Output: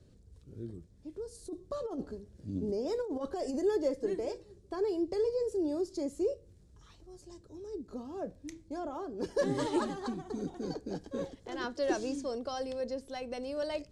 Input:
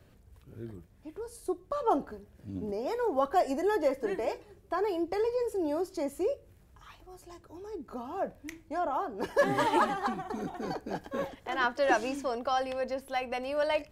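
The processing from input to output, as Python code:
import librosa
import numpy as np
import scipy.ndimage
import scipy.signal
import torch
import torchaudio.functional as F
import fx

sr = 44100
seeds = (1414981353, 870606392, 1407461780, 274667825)

y = scipy.signal.sosfilt(scipy.signal.butter(4, 9000.0, 'lowpass', fs=sr, output='sos'), x)
y = fx.band_shelf(y, sr, hz=1400.0, db=-11.5, octaves=2.5)
y = fx.over_compress(y, sr, threshold_db=-33.0, ratio=-0.5, at=(1.39, 3.59))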